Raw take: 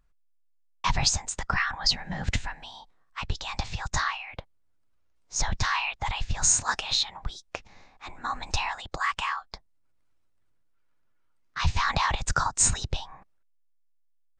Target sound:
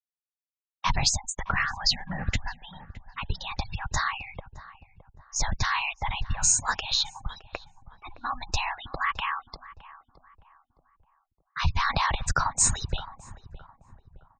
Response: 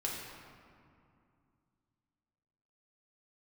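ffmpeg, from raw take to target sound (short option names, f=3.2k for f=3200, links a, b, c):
-filter_complex "[0:a]afftfilt=real='re*gte(hypot(re,im),0.02)':imag='im*gte(hypot(re,im),0.02)':win_size=1024:overlap=0.75,asplit=2[a][b];[b]adelay=615,lowpass=f=1.1k:p=1,volume=-15dB,asplit=2[c][d];[d]adelay=615,lowpass=f=1.1k:p=1,volume=0.46,asplit=2[e][f];[f]adelay=615,lowpass=f=1.1k:p=1,volume=0.46,asplit=2[g][h];[h]adelay=615,lowpass=f=1.1k:p=1,volume=0.46[i];[c][e][g][i]amix=inputs=4:normalize=0[j];[a][j]amix=inputs=2:normalize=0"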